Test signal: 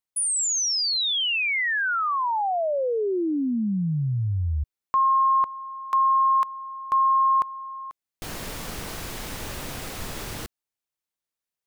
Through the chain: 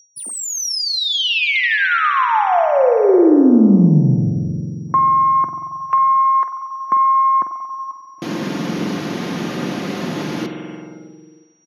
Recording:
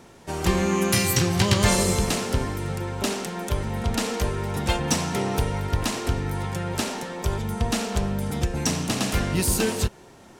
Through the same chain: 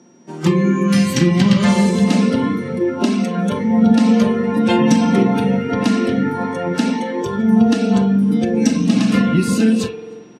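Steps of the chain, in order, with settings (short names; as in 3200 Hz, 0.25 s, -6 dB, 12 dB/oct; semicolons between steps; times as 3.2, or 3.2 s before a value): tracing distortion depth 0.021 ms; HPF 130 Hz 24 dB/oct; whine 5700 Hz -43 dBFS; bell 260 Hz +14.5 dB 1.1 oct; comb 5.7 ms, depth 36%; compressor 12:1, threshold -16 dBFS; air absorption 61 m; feedback echo 0.309 s, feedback 46%, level -22 dB; spring tank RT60 3 s, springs 45 ms, chirp 60 ms, DRR 2.5 dB; spectral noise reduction 14 dB; gain +6 dB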